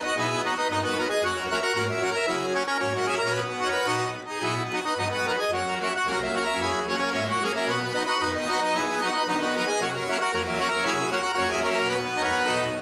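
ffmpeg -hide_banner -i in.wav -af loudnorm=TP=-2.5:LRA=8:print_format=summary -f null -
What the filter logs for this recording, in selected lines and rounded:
Input Integrated:    -25.4 LUFS
Input True Peak:     -13.5 dBTP
Input LRA:             1.3 LU
Input Threshold:     -35.4 LUFS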